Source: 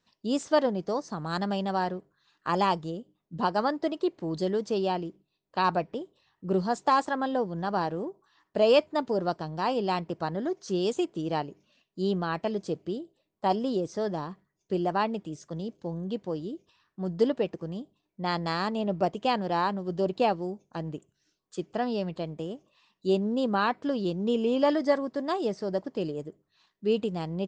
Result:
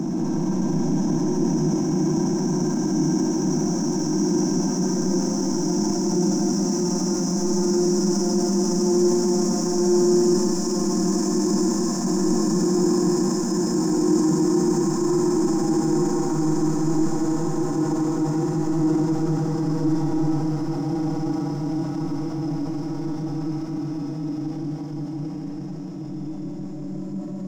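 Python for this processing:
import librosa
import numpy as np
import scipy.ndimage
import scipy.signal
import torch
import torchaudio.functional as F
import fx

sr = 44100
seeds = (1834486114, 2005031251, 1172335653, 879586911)

y = fx.brickwall_bandstop(x, sr, low_hz=350.0, high_hz=5100.0)
y = fx.peak_eq(y, sr, hz=1800.0, db=13.5, octaves=2.7)
y = fx.leveller(y, sr, passes=3)
y = fx.paulstretch(y, sr, seeds[0], factor=19.0, window_s=1.0, from_s=10.32)
y = fx.echo_split(y, sr, split_hz=360.0, low_ms=505, high_ms=169, feedback_pct=52, wet_db=-3.0)
y = fx.rev_freeverb(y, sr, rt60_s=1.7, hf_ratio=0.4, predelay_ms=45, drr_db=-0.5)
y = fx.transient(y, sr, attack_db=-5, sustain_db=3)
y = y * librosa.db_to_amplitude(-1.5)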